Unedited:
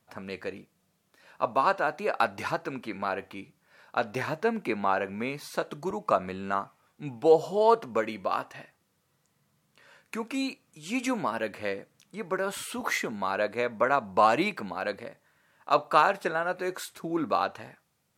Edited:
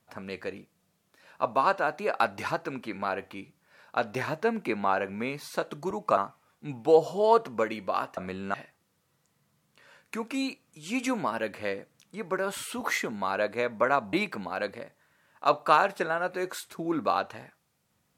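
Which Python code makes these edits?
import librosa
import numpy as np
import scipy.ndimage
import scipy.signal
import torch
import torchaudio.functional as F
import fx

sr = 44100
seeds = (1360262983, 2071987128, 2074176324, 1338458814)

y = fx.edit(x, sr, fx.move(start_s=6.17, length_s=0.37, to_s=8.54),
    fx.cut(start_s=14.13, length_s=0.25), tone=tone)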